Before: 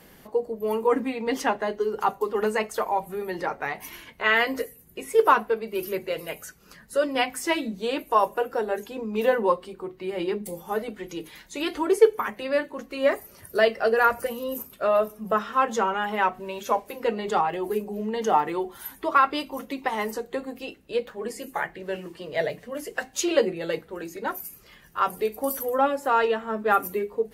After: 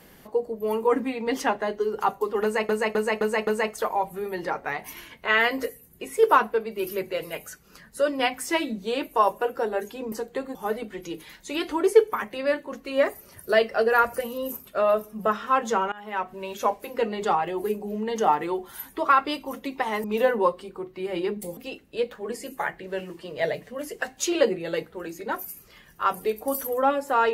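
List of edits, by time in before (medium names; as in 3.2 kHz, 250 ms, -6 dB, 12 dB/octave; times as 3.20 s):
2.43–2.69 s: loop, 5 plays
9.08–10.61 s: swap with 20.10–20.53 s
15.98–16.54 s: fade in, from -21 dB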